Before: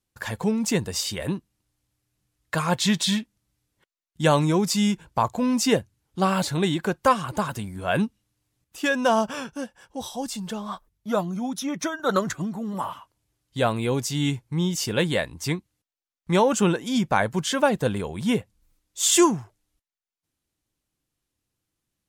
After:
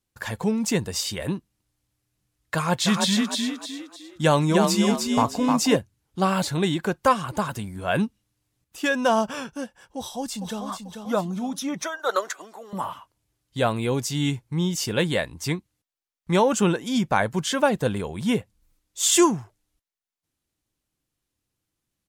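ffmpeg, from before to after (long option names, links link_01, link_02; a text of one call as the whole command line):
ffmpeg -i in.wav -filter_complex "[0:a]asettb=1/sr,asplit=3[link_01][link_02][link_03];[link_01]atrim=end=2.554[link_04];[link_02]atrim=start=2.55:end=5.76,asetpts=PTS-STARTPTS,afade=type=in:duration=0.004:curve=qsin,afade=type=out:start_time=3.206:duration=0.004:curve=qsin,asplit=6[link_05][link_06][link_07][link_08][link_09][link_10];[link_06]adelay=306,afreqshift=38,volume=-3.5dB[link_11];[link_07]adelay=612,afreqshift=76,volume=-12.1dB[link_12];[link_08]adelay=918,afreqshift=114,volume=-20.8dB[link_13];[link_09]adelay=1224,afreqshift=152,volume=-29.4dB[link_14];[link_10]adelay=1530,afreqshift=190,volume=-38dB[link_15];[link_05][link_11][link_12][link_13][link_14][link_15]amix=inputs=6:normalize=0,atrim=end_sample=141561[link_16];[link_03]atrim=start=5.756[link_17];[link_04][link_16]acrossfade=duration=0.004:curve1=hsin:curve2=qsin[link_18];[link_18][link_17]acrossfade=duration=0.004:curve1=qsin:curve2=hsin,asplit=2[link_19][link_20];[link_20]afade=type=in:start_time=9.97:duration=0.01,afade=type=out:start_time=10.66:duration=0.01,aecho=0:1:440|880|1320|1760|2200:0.446684|0.201008|0.0904534|0.040704|0.0183168[link_21];[link_19][link_21]amix=inputs=2:normalize=0,asettb=1/sr,asplit=3[link_22][link_23][link_24];[link_22]atrim=end=11.834[link_25];[link_23]atrim=start=11.83:end=12.73,asetpts=PTS-STARTPTS,afade=type=in:duration=0.004:curve=qsin,afade=type=out:start_time=0.896:duration=0.004:curve=qsin,highpass=frequency=440:width=0.5412,highpass=frequency=440:width=1.3066[link_26];[link_24]atrim=start=12.726[link_27];[link_25][link_26]acrossfade=duration=0.004:curve1=hsin:curve2=qsin[link_28];[link_28][link_27]acrossfade=duration=0.004:curve1=qsin:curve2=hsin" out.wav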